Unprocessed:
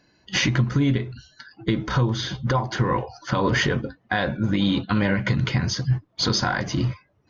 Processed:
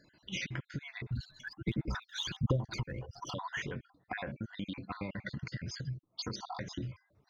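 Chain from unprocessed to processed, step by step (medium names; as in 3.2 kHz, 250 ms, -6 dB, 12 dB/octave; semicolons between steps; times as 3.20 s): random holes in the spectrogram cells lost 55%; dynamic bell 2.2 kHz, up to +5 dB, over -43 dBFS, Q 2.9; compression 5:1, threshold -36 dBFS, peak gain reduction 17.5 dB; 1.09–3.34 s: phaser 1.4 Hz, delay 1.3 ms, feedback 71%; trim -2 dB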